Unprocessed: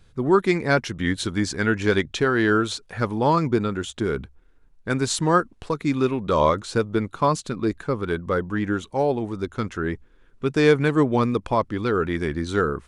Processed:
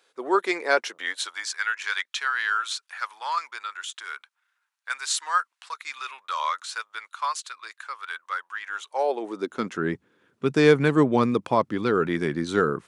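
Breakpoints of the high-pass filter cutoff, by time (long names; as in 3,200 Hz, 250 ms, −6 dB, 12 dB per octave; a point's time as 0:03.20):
high-pass filter 24 dB per octave
0:00.81 430 Hz
0:01.56 1,100 Hz
0:08.64 1,100 Hz
0:09.29 310 Hz
0:09.88 130 Hz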